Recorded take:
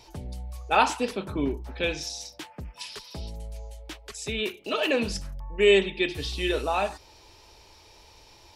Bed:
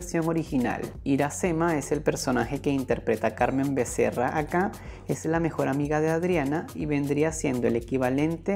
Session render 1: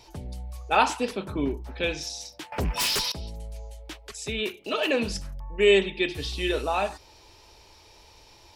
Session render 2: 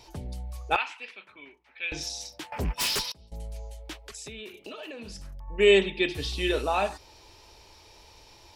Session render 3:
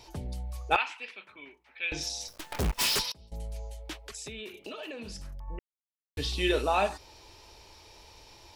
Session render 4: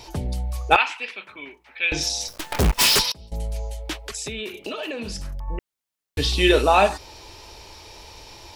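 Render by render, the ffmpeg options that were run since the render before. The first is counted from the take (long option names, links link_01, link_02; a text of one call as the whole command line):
ffmpeg -i in.wav -filter_complex "[0:a]asettb=1/sr,asplit=3[link_01][link_02][link_03];[link_01]atrim=end=2.524[link_04];[link_02]atrim=start=2.52:end=3.12,asetpts=PTS-STARTPTS,afade=type=in:duration=0.004:curve=qsin,afade=type=out:start_time=0.596:duration=0.004:curve=qsin,aeval=exprs='0.0841*sin(PI/2*6.31*val(0)/0.0841)':channel_layout=same[link_05];[link_03]atrim=start=3.116[link_06];[link_04][link_05]acrossfade=duration=0.004:curve1=hsin:curve2=qsin[link_07];[link_07][link_06]acrossfade=duration=0.004:curve1=qsin:curve2=hsin" out.wav
ffmpeg -i in.wav -filter_complex "[0:a]asettb=1/sr,asplit=3[link_01][link_02][link_03];[link_01]atrim=end=0.764[link_04];[link_02]atrim=start=0.76:end=1.92,asetpts=PTS-STARTPTS,afade=type=in:duration=0.004:curve=qsin,afade=type=out:start_time=1.156:duration=0.004:curve=qsin,bandpass=frequency=2300:width_type=q:width=3.1[link_05];[link_03]atrim=start=1.916[link_06];[link_04][link_05]acrossfade=duration=0.004:curve1=hsin:curve2=qsin[link_07];[link_07][link_06]acrossfade=duration=0.004:curve1=qsin:curve2=hsin,asettb=1/sr,asplit=3[link_08][link_09][link_10];[link_08]atrim=end=2.584[link_11];[link_09]atrim=start=2.58:end=3.32,asetpts=PTS-STARTPTS,afade=type=in:duration=0.004:curve=qsin,afade=type=out:start_time=0.736:duration=0.004:curve=qsin,agate=range=-33dB:threshold=-24dB:ratio=3:release=100:detection=peak[link_12];[link_10]atrim=start=3.316[link_13];[link_11][link_12]acrossfade=duration=0.004:curve1=hsin:curve2=qsin[link_14];[link_14][link_13]acrossfade=duration=0.004:curve1=qsin:curve2=hsin,asettb=1/sr,asplit=3[link_15][link_16][link_17];[link_15]atrim=end=4.054[link_18];[link_16]atrim=start=4.05:end=5.48,asetpts=PTS-STARTPTS,afade=type=in:duration=0.004:curve=qsin,afade=type=out:start_time=1.426:duration=0.004:curve=qsin,acompressor=threshold=-37dB:ratio=12:attack=3.2:release=140:knee=1:detection=peak[link_19];[link_17]atrim=start=5.476[link_20];[link_18][link_19]acrossfade=duration=0.004:curve1=hsin:curve2=qsin[link_21];[link_21][link_20]acrossfade=duration=0.004:curve1=qsin:curve2=hsin" out.wav
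ffmpeg -i in.wav -filter_complex "[0:a]asplit=3[link_01][link_02][link_03];[link_01]afade=type=out:start_time=2.27:duration=0.02[link_04];[link_02]acrusher=bits=6:dc=4:mix=0:aa=0.000001,afade=type=in:start_time=2.27:duration=0.02,afade=type=out:start_time=2.96:duration=0.02[link_05];[link_03]afade=type=in:start_time=2.96:duration=0.02[link_06];[link_04][link_05][link_06]amix=inputs=3:normalize=0,asplit=3[link_07][link_08][link_09];[link_07]atrim=end=5.59,asetpts=PTS-STARTPTS,afade=type=out:start_time=5.586:duration=0.004:curve=hsin[link_10];[link_08]atrim=start=5.59:end=6.17,asetpts=PTS-STARTPTS,volume=0[link_11];[link_09]atrim=start=6.17,asetpts=PTS-STARTPTS,afade=type=in:duration=0.004:curve=hsin[link_12];[link_10][link_11][link_12]concat=n=3:v=0:a=1" out.wav
ffmpeg -i in.wav -af "volume=10dB,alimiter=limit=-2dB:level=0:latency=1" out.wav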